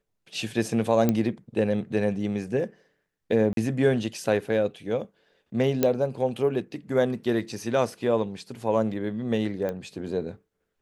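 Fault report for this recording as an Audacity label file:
1.090000	1.090000	pop -10 dBFS
3.530000	3.570000	dropout 42 ms
5.830000	5.830000	pop -8 dBFS
9.690000	9.690000	pop -19 dBFS

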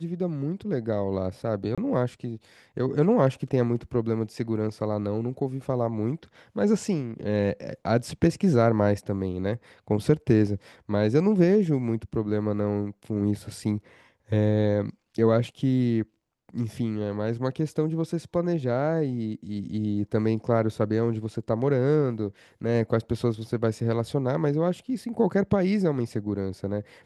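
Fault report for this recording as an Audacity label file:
1.750000	1.780000	dropout 26 ms

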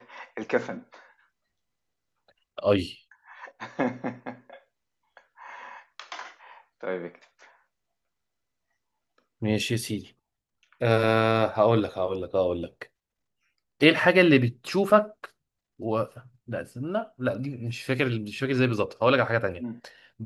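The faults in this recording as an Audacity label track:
14.900000	14.900000	dropout 3.2 ms

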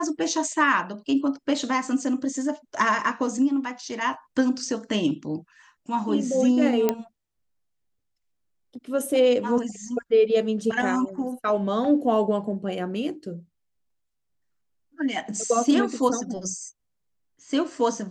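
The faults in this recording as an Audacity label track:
6.890000	6.890000	pop -8 dBFS

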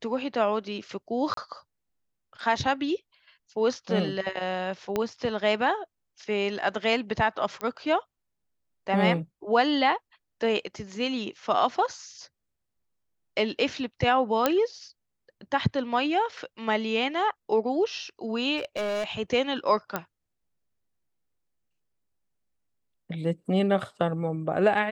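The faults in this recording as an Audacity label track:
1.340000	1.370000	dropout 33 ms
4.960000	4.960000	pop -13 dBFS
7.610000	7.610000	pop -18 dBFS
14.460000	14.460000	pop -7 dBFS
18.570000	19.040000	clipped -25.5 dBFS
19.960000	19.960000	pop -13 dBFS

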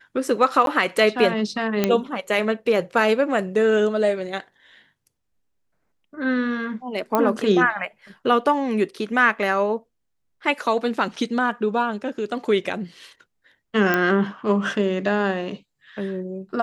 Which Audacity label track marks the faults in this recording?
0.660000	0.670000	dropout 12 ms
1.840000	1.840000	pop -5 dBFS
7.150000	7.150000	pop -7 dBFS
11.160000	11.160000	dropout 4.2 ms
13.940000	13.940000	pop -7 dBFS

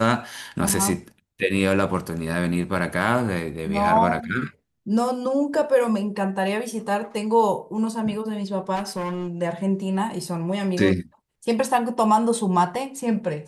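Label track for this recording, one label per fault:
0.690000	0.700000	dropout 5.1 ms
8.750000	9.280000	clipped -24 dBFS

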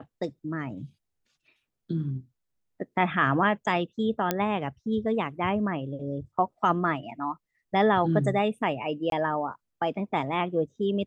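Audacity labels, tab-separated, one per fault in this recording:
4.310000	4.310000	pop -9 dBFS
9.100000	9.120000	dropout 22 ms

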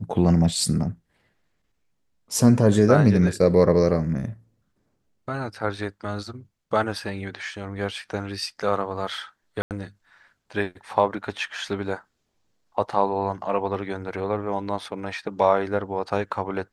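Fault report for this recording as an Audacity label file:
9.620000	9.710000	dropout 88 ms

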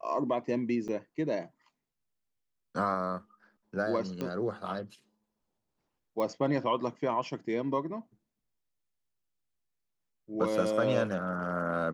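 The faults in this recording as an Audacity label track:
0.880000	0.890000	dropout 7.3 ms
4.210000	4.210000	pop -22 dBFS
6.200000	6.200000	pop -22 dBFS

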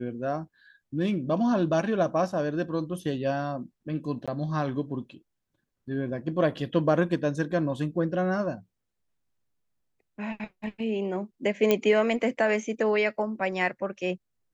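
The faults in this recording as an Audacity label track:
4.260000	4.280000	dropout 16 ms
11.710000	11.710000	pop -9 dBFS

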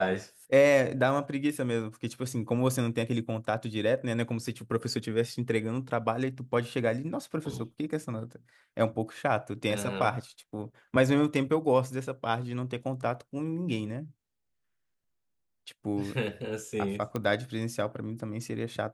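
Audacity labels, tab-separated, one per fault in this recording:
17.160000	17.160000	pop -18 dBFS

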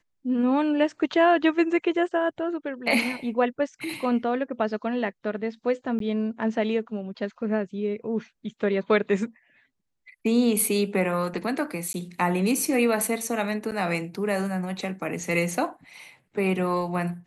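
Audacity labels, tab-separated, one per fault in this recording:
5.990000	6.000000	dropout 13 ms
11.930000	11.940000	dropout 11 ms
13.710000	13.720000	dropout 8.1 ms

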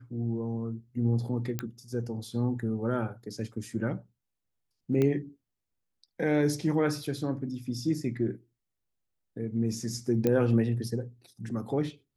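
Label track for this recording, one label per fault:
1.590000	1.590000	pop -16 dBFS
5.020000	5.020000	pop -16 dBFS
10.270000	10.270000	pop -14 dBFS

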